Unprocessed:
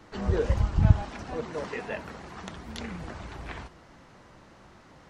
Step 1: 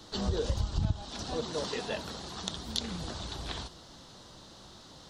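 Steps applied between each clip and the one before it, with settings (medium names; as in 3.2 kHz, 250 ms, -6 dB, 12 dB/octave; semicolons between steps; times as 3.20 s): resonant high shelf 2.9 kHz +8.5 dB, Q 3; compression 4:1, threshold -27 dBFS, peak gain reduction 14 dB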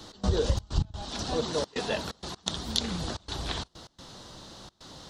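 trance gate "x.xxx.x.xxxxx" 128 bpm -24 dB; trim +5 dB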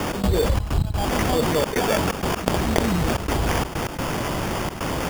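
sample-and-hold 11×; level flattener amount 70%; trim +3.5 dB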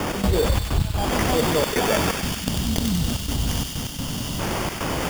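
time-frequency box 2.22–4.40 s, 290–2700 Hz -11 dB; feedback echo behind a high-pass 95 ms, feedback 73%, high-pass 2.1 kHz, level -3 dB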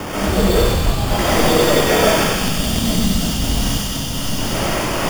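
algorithmic reverb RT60 0.94 s, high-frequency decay 0.95×, pre-delay 85 ms, DRR -8 dB; trim -1.5 dB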